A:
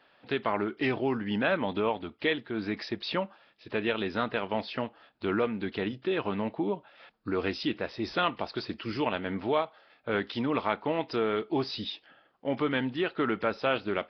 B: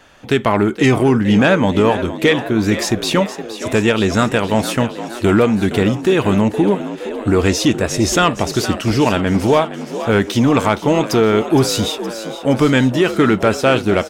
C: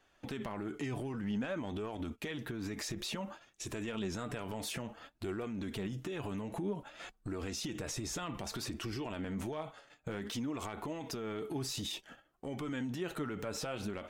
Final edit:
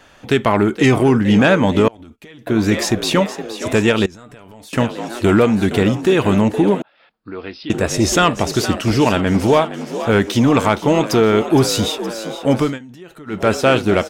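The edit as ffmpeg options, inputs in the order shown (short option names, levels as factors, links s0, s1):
-filter_complex "[2:a]asplit=3[s0][s1][s2];[1:a]asplit=5[s3][s4][s5][s6][s7];[s3]atrim=end=1.882[s8];[s0]atrim=start=1.878:end=2.472[s9];[s4]atrim=start=2.468:end=4.062[s10];[s1]atrim=start=4.058:end=4.732[s11];[s5]atrim=start=4.728:end=6.822[s12];[0:a]atrim=start=6.818:end=7.702[s13];[s6]atrim=start=7.698:end=12.79[s14];[s2]atrim=start=12.55:end=13.5[s15];[s7]atrim=start=13.26[s16];[s8][s9]acrossfade=d=0.004:c1=hsin:c2=hsin[s17];[s17][s10]acrossfade=d=0.004:c1=hsin:c2=hsin[s18];[s18][s11]acrossfade=d=0.004:c1=hsin:c2=hsin[s19];[s19][s12]acrossfade=d=0.004:c1=hsin:c2=hsin[s20];[s20][s13]acrossfade=d=0.004:c1=hsin:c2=hsin[s21];[s21][s14]acrossfade=d=0.004:c1=hsin:c2=hsin[s22];[s22][s15]acrossfade=d=0.24:c1=tri:c2=tri[s23];[s23][s16]acrossfade=d=0.24:c1=tri:c2=tri"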